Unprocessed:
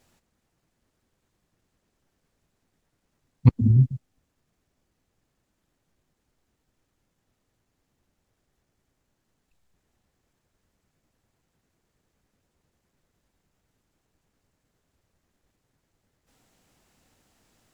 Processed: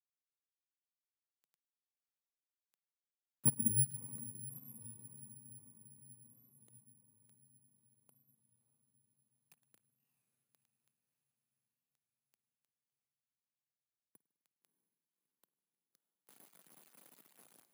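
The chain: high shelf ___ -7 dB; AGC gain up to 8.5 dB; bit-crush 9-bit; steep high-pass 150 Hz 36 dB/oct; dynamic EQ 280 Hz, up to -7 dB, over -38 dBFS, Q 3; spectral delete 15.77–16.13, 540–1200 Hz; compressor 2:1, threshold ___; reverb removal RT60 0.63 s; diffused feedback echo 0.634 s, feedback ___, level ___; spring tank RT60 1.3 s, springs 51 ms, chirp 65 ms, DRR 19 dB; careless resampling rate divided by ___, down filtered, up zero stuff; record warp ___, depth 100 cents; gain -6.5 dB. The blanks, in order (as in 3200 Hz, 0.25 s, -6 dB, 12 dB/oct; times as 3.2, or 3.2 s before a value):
2100 Hz, -33 dBFS, 60%, -14.5 dB, 4×, 33 1/3 rpm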